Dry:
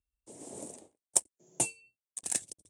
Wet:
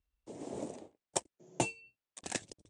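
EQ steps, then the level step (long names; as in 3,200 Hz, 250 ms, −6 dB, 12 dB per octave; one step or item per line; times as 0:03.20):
high-frequency loss of the air 150 metres
+5.5 dB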